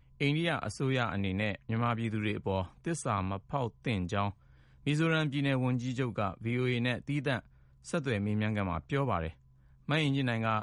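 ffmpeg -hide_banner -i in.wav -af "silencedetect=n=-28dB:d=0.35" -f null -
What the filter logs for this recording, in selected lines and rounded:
silence_start: 4.29
silence_end: 4.87 | silence_duration: 0.58
silence_start: 7.37
silence_end: 7.94 | silence_duration: 0.57
silence_start: 9.27
silence_end: 9.89 | silence_duration: 0.62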